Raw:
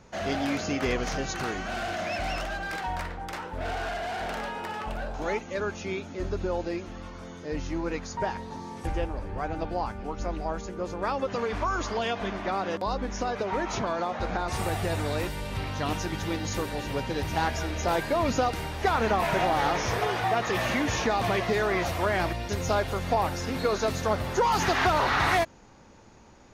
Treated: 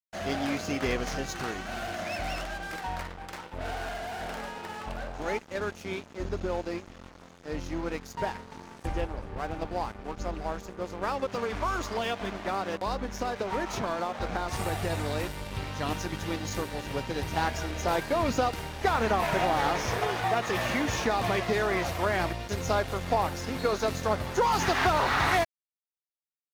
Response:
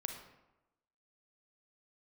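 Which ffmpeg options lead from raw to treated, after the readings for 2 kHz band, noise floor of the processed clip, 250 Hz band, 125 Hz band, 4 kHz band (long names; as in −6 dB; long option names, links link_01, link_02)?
−1.5 dB, −55 dBFS, −2.0 dB, −2.0 dB, −1.5 dB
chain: -af "aeval=exprs='sgn(val(0))*max(abs(val(0))-0.01,0)':channel_layout=same"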